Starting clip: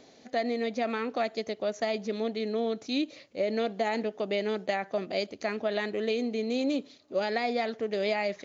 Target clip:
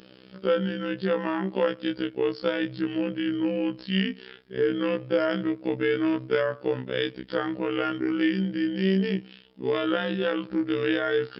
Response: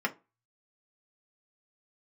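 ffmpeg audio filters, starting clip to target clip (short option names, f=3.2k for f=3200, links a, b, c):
-af "afftfilt=real='hypot(re,im)*cos(PI*b)':imag='0':win_size=2048:overlap=0.75,asetrate=32667,aresample=44100,volume=7.5dB"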